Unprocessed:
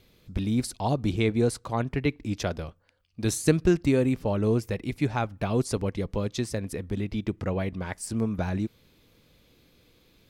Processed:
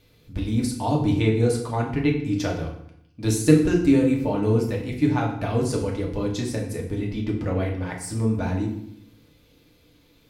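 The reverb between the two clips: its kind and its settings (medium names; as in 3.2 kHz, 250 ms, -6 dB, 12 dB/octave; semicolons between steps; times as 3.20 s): FDN reverb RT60 0.71 s, low-frequency decay 1.35×, high-frequency decay 0.8×, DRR -1.5 dB; trim -1.5 dB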